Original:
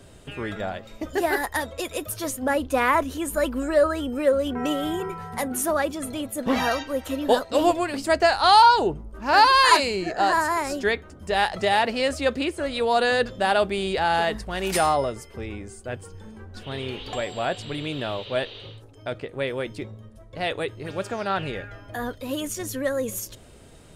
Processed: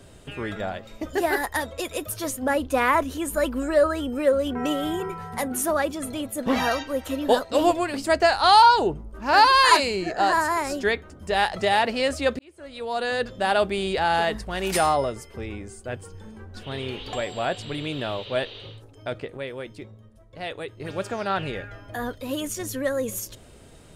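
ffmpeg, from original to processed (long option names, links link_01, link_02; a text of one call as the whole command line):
ffmpeg -i in.wav -filter_complex "[0:a]asplit=4[link_01][link_02][link_03][link_04];[link_01]atrim=end=12.39,asetpts=PTS-STARTPTS,afade=type=out:start_time=12.386:duration=0.004:curve=hsin[link_05];[link_02]atrim=start=12.39:end=19.372,asetpts=PTS-STARTPTS,afade=type=in:duration=1.23[link_06];[link_03]atrim=start=19.368:end=20.802,asetpts=PTS-STARTPTS,volume=-6dB[link_07];[link_04]atrim=start=20.798[link_08];[link_05][link_06]concat=n=2:v=0:a=1[link_09];[link_09][link_07]acrossfade=duration=0.004:curve1=hsin:curve2=hsin[link_10];[link_10][link_08]acrossfade=duration=0.004:curve1=hsin:curve2=hsin" out.wav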